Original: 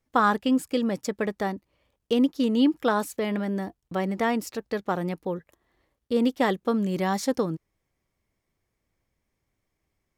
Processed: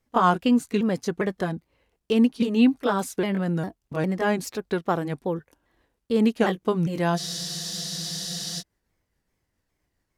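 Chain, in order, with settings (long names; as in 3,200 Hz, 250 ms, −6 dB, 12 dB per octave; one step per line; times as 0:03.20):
pitch shifter swept by a sawtooth −3.5 semitones, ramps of 404 ms
frozen spectrum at 0:07.20, 1.41 s
level +3 dB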